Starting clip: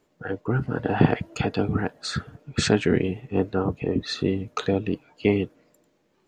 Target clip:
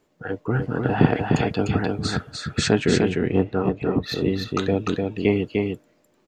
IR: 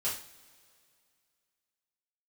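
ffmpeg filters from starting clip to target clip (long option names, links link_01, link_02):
-filter_complex "[0:a]asettb=1/sr,asplit=3[link_01][link_02][link_03];[link_01]atrim=end=3.134[link_04];[link_02]atrim=start=3.13:end=4.18,asetpts=PTS-STARTPTS,afade=type=in:duration=0.004:curve=qsin,afade=type=out:start_time=1.046:duration=0.004:curve=qsin,adynamicsmooth=sensitivity=3:basefreq=4900[link_05];[link_03]atrim=start=4.176[link_06];[link_04][link_05]acrossfade=duration=0.004:curve1=hsin:curve2=qsin[link_07];[link_07][link_06]acrossfade=duration=0.004:curve1=qsin:curve2=hsin,aecho=1:1:300:0.668,volume=1dB"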